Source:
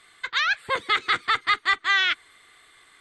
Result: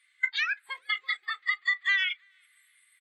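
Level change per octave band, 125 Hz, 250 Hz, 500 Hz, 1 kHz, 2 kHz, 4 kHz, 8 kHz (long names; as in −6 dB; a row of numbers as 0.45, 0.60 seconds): can't be measured, below −35 dB, below −25 dB, −15.5 dB, −4.5 dB, −8.0 dB, below −10 dB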